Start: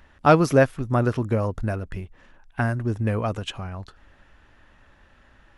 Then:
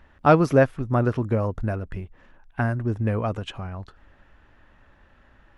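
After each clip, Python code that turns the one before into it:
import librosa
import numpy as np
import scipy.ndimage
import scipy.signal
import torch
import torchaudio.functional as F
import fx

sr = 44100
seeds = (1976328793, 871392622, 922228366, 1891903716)

y = fx.high_shelf(x, sr, hz=3700.0, db=-10.0)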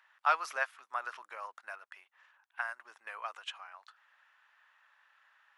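y = scipy.signal.sosfilt(scipy.signal.butter(4, 1000.0, 'highpass', fs=sr, output='sos'), x)
y = y * librosa.db_to_amplitude(-4.5)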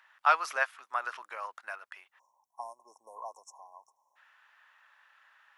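y = fx.spec_erase(x, sr, start_s=2.19, length_s=1.97, low_hz=1100.0, high_hz=5300.0)
y = y * librosa.db_to_amplitude(4.0)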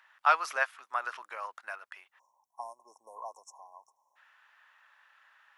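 y = x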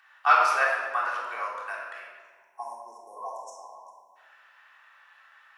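y = fx.room_shoebox(x, sr, seeds[0], volume_m3=1500.0, walls='mixed', distance_m=3.5)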